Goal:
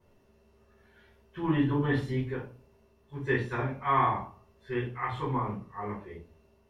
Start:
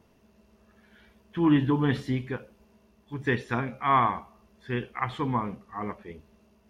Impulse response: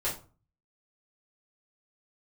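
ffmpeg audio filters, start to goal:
-filter_complex "[1:a]atrim=start_sample=2205[s0];[0:a][s0]afir=irnorm=-1:irlink=0,volume=0.355"

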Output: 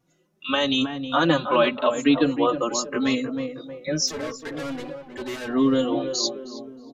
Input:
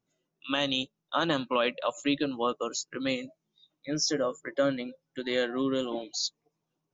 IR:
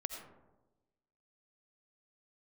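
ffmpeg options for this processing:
-filter_complex "[0:a]equalizer=f=4700:t=o:w=2:g=-3.5,asplit=2[s0][s1];[s1]acompressor=threshold=0.01:ratio=6,volume=1.26[s2];[s0][s2]amix=inputs=2:normalize=0,asplit=3[s3][s4][s5];[s3]afade=t=out:st=4.06:d=0.02[s6];[s4]volume=56.2,asoftclip=hard,volume=0.0178,afade=t=in:st=4.06:d=0.02,afade=t=out:st=5.47:d=0.02[s7];[s5]afade=t=in:st=5.47:d=0.02[s8];[s6][s7][s8]amix=inputs=3:normalize=0,asplit=2[s9][s10];[s10]adelay=316,lowpass=f=1300:p=1,volume=0.447,asplit=2[s11][s12];[s12]adelay=316,lowpass=f=1300:p=1,volume=0.49,asplit=2[s13][s14];[s14]adelay=316,lowpass=f=1300:p=1,volume=0.49,asplit=2[s15][s16];[s16]adelay=316,lowpass=f=1300:p=1,volume=0.49,asplit=2[s17][s18];[s18]adelay=316,lowpass=f=1300:p=1,volume=0.49,asplit=2[s19][s20];[s20]adelay=316,lowpass=f=1300:p=1,volume=0.49[s21];[s11][s13][s15][s17][s19][s21]amix=inputs=6:normalize=0[s22];[s9][s22]amix=inputs=2:normalize=0,aresample=32000,aresample=44100,asplit=2[s23][s24];[s24]adelay=3.7,afreqshift=0.84[s25];[s23][s25]amix=inputs=2:normalize=1,volume=2.66"

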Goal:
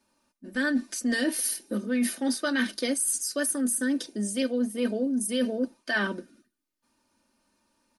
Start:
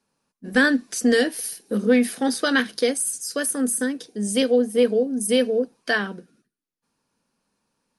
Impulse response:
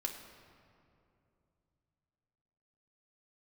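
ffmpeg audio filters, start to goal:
-af "aecho=1:1:3.3:0.75,areverse,acompressor=threshold=0.0562:ratio=10,areverse,volume=1.19"

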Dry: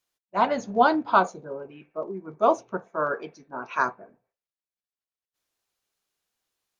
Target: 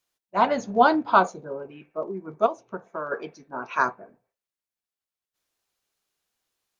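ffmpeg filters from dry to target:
-filter_complex "[0:a]asettb=1/sr,asplit=3[s0][s1][s2];[s0]atrim=end=2.464[s3];[s1]atrim=start=2.46:end=3.12,asetpts=PTS-STARTPTS,afade=t=in:d=0.004:c=qsin,afade=t=out:st=0.656:d=0.004:c=qsin,acompressor=threshold=0.0282:ratio=5[s4];[s2]atrim=start=3.116[s5];[s3][s4]acrossfade=d=0.004:c1=hsin:c2=qsin[s6];[s6][s5]acrossfade=d=0.004:c1=qsin:c2=hsin,volume=1.19"

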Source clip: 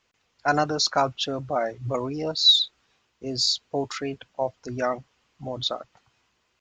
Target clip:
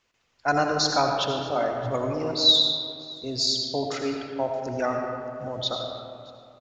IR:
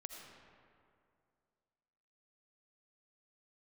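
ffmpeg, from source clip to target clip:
-filter_complex "[0:a]aecho=1:1:623:0.0668[s0];[1:a]atrim=start_sample=2205[s1];[s0][s1]afir=irnorm=-1:irlink=0,volume=1.68"

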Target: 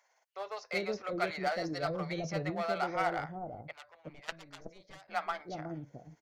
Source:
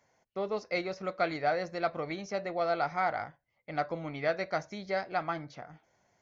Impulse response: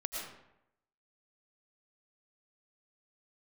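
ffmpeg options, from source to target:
-filter_complex "[0:a]asettb=1/sr,asplit=3[s0][s1][s2];[s0]atrim=end=1.464[s3];[s1]atrim=start=1.46:end=2.13,asetpts=PTS-STARTPTS,afade=t=in:d=0.004:c=qsin,afade=t=out:st=0.666:d=0.004:c=qsin,equalizer=f=160:t=o:w=0.33:g=10,equalizer=f=2500:t=o:w=0.33:g=-7,equalizer=f=5000:t=o:w=0.33:g=10[s4];[s2]atrim=start=2.126[s5];[s3][s4]acrossfade=d=0.004:c1=hsin:c2=qsin[s6];[s6][s5]acrossfade=d=0.004:c1=qsin:c2=hsin,tremolo=f=17:d=0.35,asplit=2[s7][s8];[s8]aeval=exprs='0.0251*(abs(mod(val(0)/0.0251+3,4)-2)-1)':c=same,volume=0.335[s9];[s7][s9]amix=inputs=2:normalize=0,asplit=3[s10][s11][s12];[s10]afade=t=out:st=3.71:d=0.02[s13];[s11]aeval=exprs='0.141*(cos(1*acos(clip(val(0)/0.141,-1,1)))-cos(1*PI/2))+0.0562*(cos(3*acos(clip(val(0)/0.141,-1,1)))-cos(3*PI/2))+0.00562*(cos(4*acos(clip(val(0)/0.141,-1,1)))-cos(4*PI/2))':c=same,afade=t=in:st=3.71:d=0.02,afade=t=out:st=5.07:d=0.02[s14];[s12]afade=t=in:st=5.07:d=0.02[s15];[s13][s14][s15]amix=inputs=3:normalize=0,acrossover=split=580[s16][s17];[s16]adelay=370[s18];[s18][s17]amix=inputs=2:normalize=0"

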